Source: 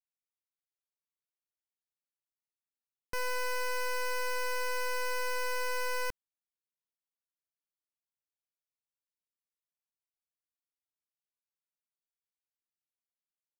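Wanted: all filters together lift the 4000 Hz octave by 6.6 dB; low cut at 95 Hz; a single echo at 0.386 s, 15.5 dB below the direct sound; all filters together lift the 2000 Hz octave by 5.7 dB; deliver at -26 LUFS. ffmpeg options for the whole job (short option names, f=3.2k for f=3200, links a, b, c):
-af "highpass=95,equalizer=f=2k:t=o:g=6,equalizer=f=4k:t=o:g=7.5,aecho=1:1:386:0.168,volume=4dB"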